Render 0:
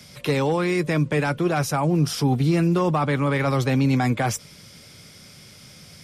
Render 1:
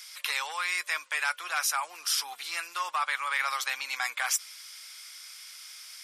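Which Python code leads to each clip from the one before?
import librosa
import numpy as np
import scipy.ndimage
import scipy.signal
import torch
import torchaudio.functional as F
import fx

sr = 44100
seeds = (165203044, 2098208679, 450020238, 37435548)

y = scipy.signal.sosfilt(scipy.signal.butter(4, 1100.0, 'highpass', fs=sr, output='sos'), x)
y = fx.high_shelf(y, sr, hz=6500.0, db=5.5)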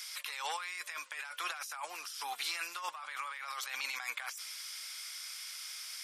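y = fx.over_compress(x, sr, threshold_db=-37.0, ratio=-1.0)
y = y * librosa.db_to_amplitude(-3.5)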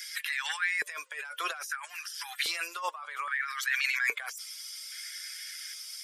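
y = fx.bin_expand(x, sr, power=1.5)
y = fx.filter_lfo_highpass(y, sr, shape='square', hz=0.61, low_hz=440.0, high_hz=1700.0, q=5.9)
y = y * librosa.db_to_amplitude(6.0)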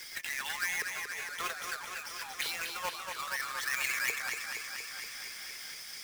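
y = fx.halfwave_hold(x, sr)
y = fx.echo_warbled(y, sr, ms=235, feedback_pct=73, rate_hz=2.8, cents=52, wet_db=-6)
y = y * librosa.db_to_amplitude(-7.5)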